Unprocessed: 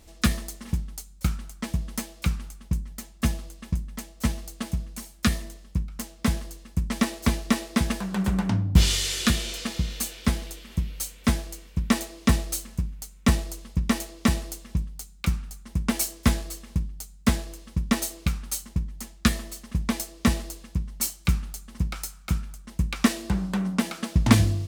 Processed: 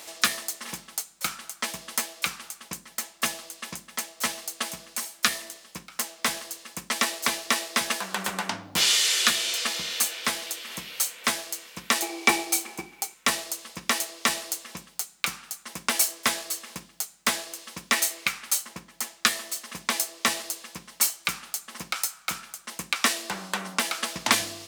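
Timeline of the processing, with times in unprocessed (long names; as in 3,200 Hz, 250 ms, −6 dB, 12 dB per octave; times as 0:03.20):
0:12.02–0:13.14: hollow resonant body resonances 360/780/2,300 Hz, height 18 dB
0:17.92–0:18.51: parametric band 2,100 Hz +6.5 dB 0.66 octaves
whole clip: Bessel high-pass filter 860 Hz, order 2; multiband upward and downward compressor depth 40%; level +7 dB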